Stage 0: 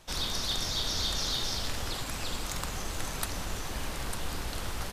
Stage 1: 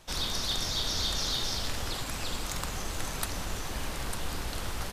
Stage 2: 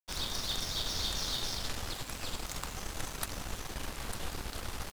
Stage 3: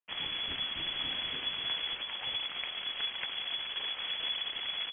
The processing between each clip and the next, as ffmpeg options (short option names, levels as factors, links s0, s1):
-af "acontrast=38,volume=0.562"
-af "aeval=exprs='sgn(val(0))*max(abs(val(0))-0.0112,0)':c=same,volume=0.841"
-af "lowpass=f=2900:t=q:w=0.5098,lowpass=f=2900:t=q:w=0.6013,lowpass=f=2900:t=q:w=0.9,lowpass=f=2900:t=q:w=2.563,afreqshift=-3400,volume=1.26"